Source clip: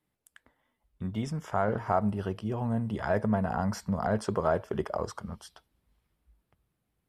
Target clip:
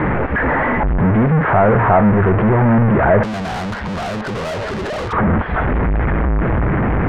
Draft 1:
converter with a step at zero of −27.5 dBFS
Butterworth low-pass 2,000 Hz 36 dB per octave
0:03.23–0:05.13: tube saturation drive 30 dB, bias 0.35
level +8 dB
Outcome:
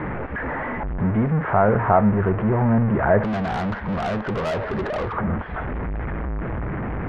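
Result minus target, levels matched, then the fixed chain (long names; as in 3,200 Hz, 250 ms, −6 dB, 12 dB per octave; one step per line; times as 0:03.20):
converter with a step at zero: distortion −6 dB
converter with a step at zero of −16.5 dBFS
Butterworth low-pass 2,000 Hz 36 dB per octave
0:03.23–0:05.13: tube saturation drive 30 dB, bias 0.35
level +8 dB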